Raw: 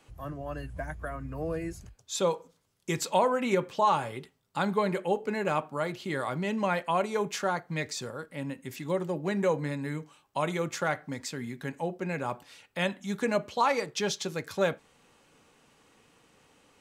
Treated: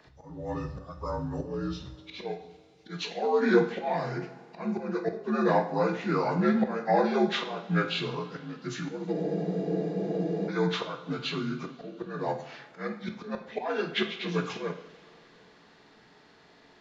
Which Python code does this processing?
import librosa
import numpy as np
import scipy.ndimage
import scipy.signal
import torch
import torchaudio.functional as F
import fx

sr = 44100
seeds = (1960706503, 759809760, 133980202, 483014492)

y = fx.partial_stretch(x, sr, pct=82)
y = fx.auto_swell(y, sr, attack_ms=316.0)
y = fx.rev_double_slope(y, sr, seeds[0], early_s=0.57, late_s=3.6, knee_db=-18, drr_db=5.5)
y = fx.spec_freeze(y, sr, seeds[1], at_s=9.14, hold_s=1.34)
y = F.gain(torch.from_numpy(y), 5.5).numpy()